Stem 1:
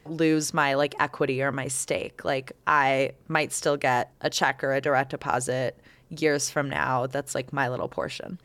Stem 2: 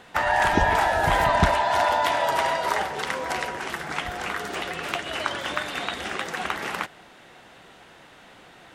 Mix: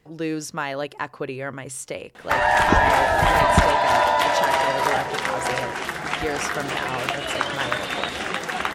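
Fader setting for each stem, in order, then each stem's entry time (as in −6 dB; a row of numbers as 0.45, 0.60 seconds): −4.5, +3.0 decibels; 0.00, 2.15 seconds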